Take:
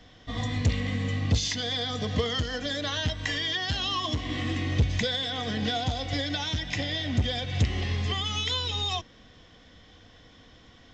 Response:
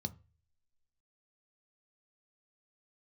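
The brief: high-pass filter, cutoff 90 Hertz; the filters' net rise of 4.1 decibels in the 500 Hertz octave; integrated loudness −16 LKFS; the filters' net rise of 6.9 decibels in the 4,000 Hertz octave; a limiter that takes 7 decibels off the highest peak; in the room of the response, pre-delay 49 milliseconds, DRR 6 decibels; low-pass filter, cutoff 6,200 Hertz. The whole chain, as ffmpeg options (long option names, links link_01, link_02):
-filter_complex "[0:a]highpass=90,lowpass=6200,equalizer=frequency=500:width_type=o:gain=4.5,equalizer=frequency=4000:width_type=o:gain=9,alimiter=limit=-17.5dB:level=0:latency=1,asplit=2[link_01][link_02];[1:a]atrim=start_sample=2205,adelay=49[link_03];[link_02][link_03]afir=irnorm=-1:irlink=0,volume=-4.5dB[link_04];[link_01][link_04]amix=inputs=2:normalize=0,volume=7.5dB"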